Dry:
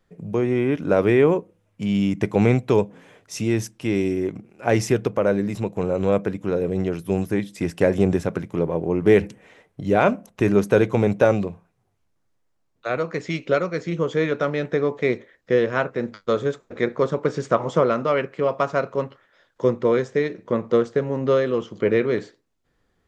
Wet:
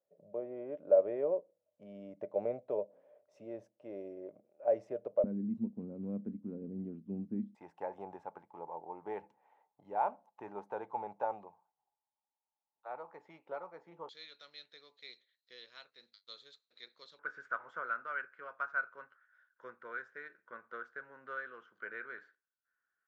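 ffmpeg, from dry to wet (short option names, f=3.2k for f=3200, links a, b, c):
-af "asetnsamples=n=441:p=0,asendcmd='5.24 bandpass f 230;7.55 bandpass f 860;14.09 bandpass f 4100;17.19 bandpass f 1500',bandpass=f=590:t=q:w=14:csg=0"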